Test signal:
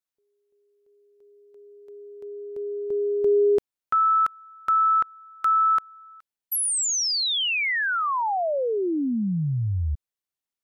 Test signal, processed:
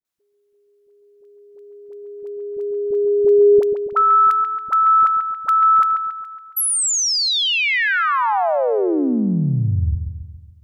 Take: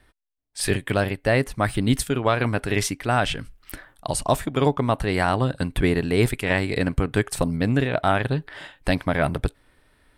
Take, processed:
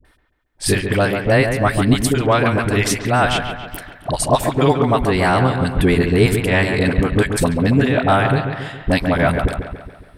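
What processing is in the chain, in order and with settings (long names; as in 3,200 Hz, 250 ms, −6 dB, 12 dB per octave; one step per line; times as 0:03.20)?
all-pass dispersion highs, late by 49 ms, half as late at 630 Hz
on a send: delay with a low-pass on its return 139 ms, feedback 52%, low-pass 2,900 Hz, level −7 dB
on the sum: level +5.5 dB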